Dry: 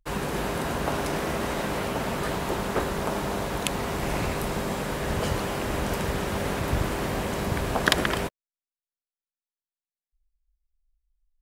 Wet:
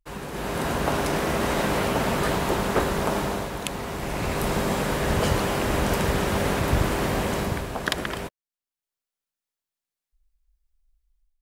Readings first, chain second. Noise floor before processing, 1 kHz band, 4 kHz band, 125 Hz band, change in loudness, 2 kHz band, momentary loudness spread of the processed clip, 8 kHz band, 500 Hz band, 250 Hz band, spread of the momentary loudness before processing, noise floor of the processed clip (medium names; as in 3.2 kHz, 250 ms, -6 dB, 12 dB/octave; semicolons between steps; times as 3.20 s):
under -85 dBFS, +2.5 dB, +1.0 dB, +3.0 dB, +2.5 dB, +1.5 dB, 7 LU, +2.0 dB, +3.0 dB, +3.0 dB, 4 LU, under -85 dBFS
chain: level rider gain up to 12 dB; trim -6.5 dB